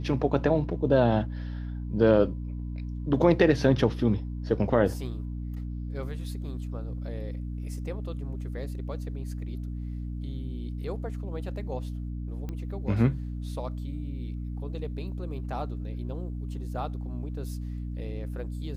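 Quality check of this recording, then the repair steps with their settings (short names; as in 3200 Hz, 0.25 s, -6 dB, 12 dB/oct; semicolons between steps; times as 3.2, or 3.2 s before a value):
hum 60 Hz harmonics 5 -34 dBFS
12.49 pop -24 dBFS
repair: de-click; de-hum 60 Hz, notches 5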